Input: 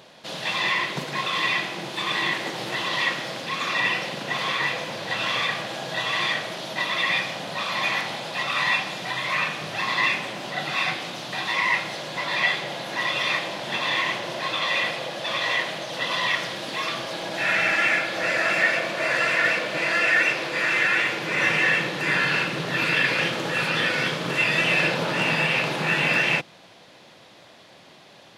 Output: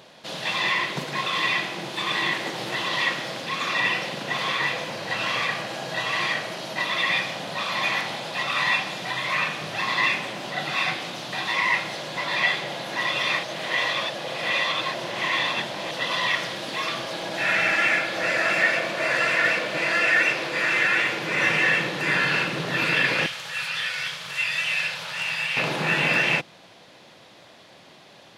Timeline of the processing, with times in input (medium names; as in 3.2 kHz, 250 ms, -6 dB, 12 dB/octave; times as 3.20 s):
4.90–6.85 s: band-stop 3.5 kHz, Q 13
13.43–15.91 s: reverse
23.26–25.57 s: amplifier tone stack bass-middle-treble 10-0-10